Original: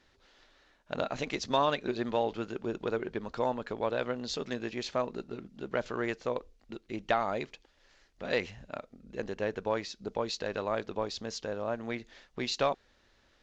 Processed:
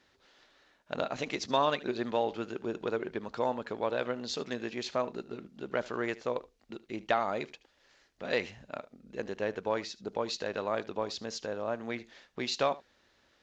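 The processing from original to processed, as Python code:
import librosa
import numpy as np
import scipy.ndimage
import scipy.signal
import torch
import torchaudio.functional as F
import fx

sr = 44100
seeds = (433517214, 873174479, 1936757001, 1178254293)

y = fx.highpass(x, sr, hz=130.0, slope=6)
y = y + 10.0 ** (-19.5 / 20.0) * np.pad(y, (int(75 * sr / 1000.0), 0))[:len(y)]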